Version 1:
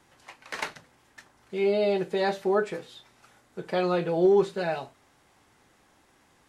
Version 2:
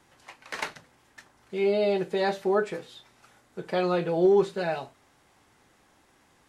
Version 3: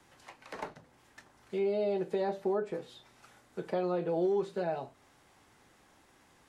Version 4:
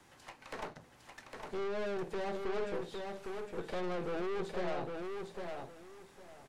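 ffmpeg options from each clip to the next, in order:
-af anull
-filter_complex "[0:a]acrossover=split=200|1000[a][b][c];[a]acompressor=threshold=-47dB:ratio=4[d];[b]acompressor=threshold=-28dB:ratio=4[e];[c]acompressor=threshold=-51dB:ratio=4[f];[d][e][f]amix=inputs=3:normalize=0,volume=-1dB"
-af "aeval=exprs='(tanh(89.1*val(0)+0.6)-tanh(0.6))/89.1':c=same,aecho=1:1:807|1614|2421:0.596|0.131|0.0288,volume=3.5dB"

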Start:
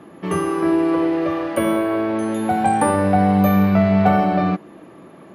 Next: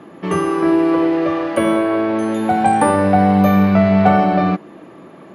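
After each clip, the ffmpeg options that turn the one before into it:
-af "lowpass=8.9k,lowshelf=f=60:g=-10.5,volume=3.5dB"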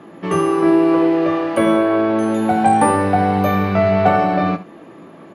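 -af "aecho=1:1:18|74:0.398|0.168,volume=-1dB"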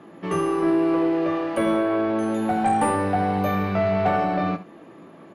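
-af "aeval=exprs='(tanh(2.24*val(0)+0.05)-tanh(0.05))/2.24':c=same,volume=-5.5dB"

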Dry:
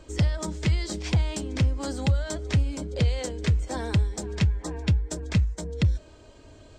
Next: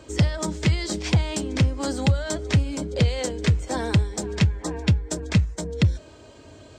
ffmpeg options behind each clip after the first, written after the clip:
-af "highpass=82,volume=5dB"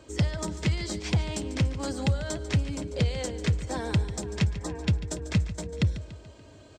-af "aecho=1:1:144|288|432|576|720:0.2|0.0998|0.0499|0.0249|0.0125,volume=-5.5dB"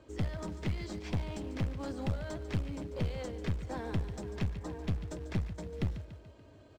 -af "aeval=exprs='clip(val(0),-1,0.0335)':c=same,acrusher=bits=4:mode=log:mix=0:aa=0.000001,aemphasis=mode=reproduction:type=75kf,volume=-5.5dB"

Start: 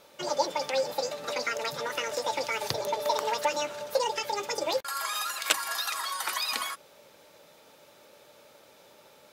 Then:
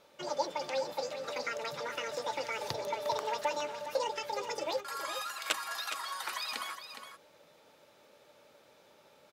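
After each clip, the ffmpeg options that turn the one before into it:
-filter_complex "[0:a]highshelf=f=6.7k:g=-7.5,asplit=2[a][b];[b]aecho=0:1:414:0.335[c];[a][c]amix=inputs=2:normalize=0,volume=-5.5dB"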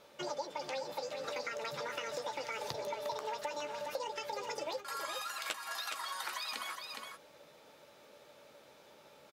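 -filter_complex "[0:a]asplit=2[a][b];[b]adelay=14,volume=-11dB[c];[a][c]amix=inputs=2:normalize=0,acompressor=threshold=-39dB:ratio=4,volume=2dB"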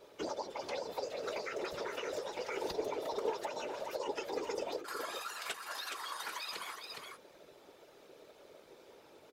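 -af "equalizer=f=420:w=5.7:g=13.5,afftfilt=real='hypot(re,im)*cos(2*PI*random(0))':imag='hypot(re,im)*sin(2*PI*random(1))':win_size=512:overlap=0.75,volume=4dB"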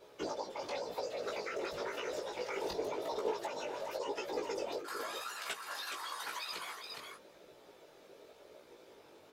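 -af "flanger=delay=16:depth=4.4:speed=0.93,volume=3dB"

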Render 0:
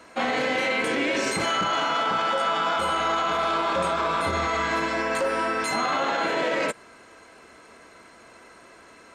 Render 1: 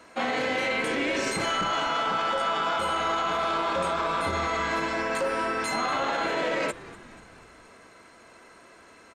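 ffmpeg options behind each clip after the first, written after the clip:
-filter_complex "[0:a]asplit=6[a][b][c][d][e][f];[b]adelay=242,afreqshift=-150,volume=-18.5dB[g];[c]adelay=484,afreqshift=-300,volume=-23.2dB[h];[d]adelay=726,afreqshift=-450,volume=-28dB[i];[e]adelay=968,afreqshift=-600,volume=-32.7dB[j];[f]adelay=1210,afreqshift=-750,volume=-37.4dB[k];[a][g][h][i][j][k]amix=inputs=6:normalize=0,volume=-2.5dB"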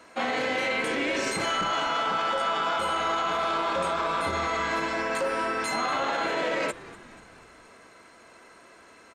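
-af "lowshelf=f=190:g=-3.5"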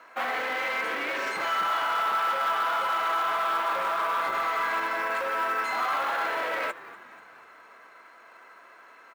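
-af "aeval=exprs='0.0668*(abs(mod(val(0)/0.0668+3,4)-2)-1)':c=same,bandpass=f=1.3k:t=q:w=1.1:csg=0,acrusher=bits=6:mode=log:mix=0:aa=0.000001,volume=4dB"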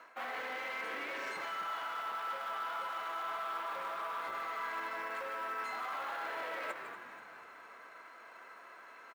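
-af "areverse,acompressor=threshold=-36dB:ratio=5,areverse,aecho=1:1:153:0.316,volume=-2.5dB"

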